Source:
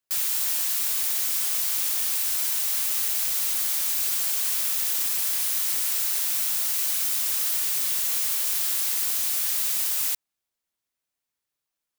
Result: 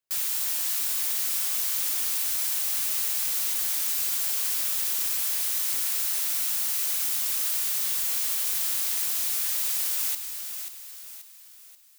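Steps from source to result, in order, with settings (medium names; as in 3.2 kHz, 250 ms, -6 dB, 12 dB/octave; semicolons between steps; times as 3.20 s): thinning echo 534 ms, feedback 43%, high-pass 350 Hz, level -8 dB; trim -2.5 dB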